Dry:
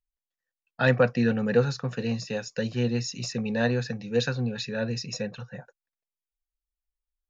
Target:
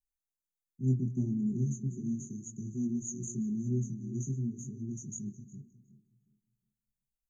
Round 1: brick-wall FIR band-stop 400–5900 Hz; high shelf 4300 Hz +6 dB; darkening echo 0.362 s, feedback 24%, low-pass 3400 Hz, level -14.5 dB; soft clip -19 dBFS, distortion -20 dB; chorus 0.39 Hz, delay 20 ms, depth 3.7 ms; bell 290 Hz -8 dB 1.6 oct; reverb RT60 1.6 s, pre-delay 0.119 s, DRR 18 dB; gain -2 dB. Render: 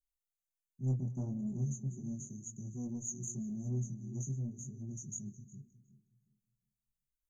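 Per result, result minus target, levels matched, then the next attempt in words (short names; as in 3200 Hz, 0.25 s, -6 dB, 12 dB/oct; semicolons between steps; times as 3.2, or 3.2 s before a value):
soft clip: distortion +17 dB; 250 Hz band -2.5 dB
brick-wall FIR band-stop 400–5900 Hz; high shelf 4300 Hz +6 dB; darkening echo 0.362 s, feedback 24%, low-pass 3400 Hz, level -14.5 dB; soft clip -9 dBFS, distortion -38 dB; chorus 0.39 Hz, delay 20 ms, depth 3.7 ms; bell 290 Hz -8 dB 1.6 oct; reverb RT60 1.6 s, pre-delay 0.119 s, DRR 18 dB; gain -2 dB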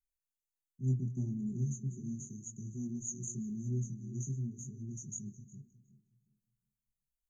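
250 Hz band -2.5 dB
brick-wall FIR band-stop 400–5900 Hz; high shelf 4300 Hz +6 dB; darkening echo 0.362 s, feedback 24%, low-pass 3400 Hz, level -14.5 dB; soft clip -9 dBFS, distortion -38 dB; chorus 0.39 Hz, delay 20 ms, depth 3.7 ms; reverb RT60 1.6 s, pre-delay 0.119 s, DRR 18 dB; gain -2 dB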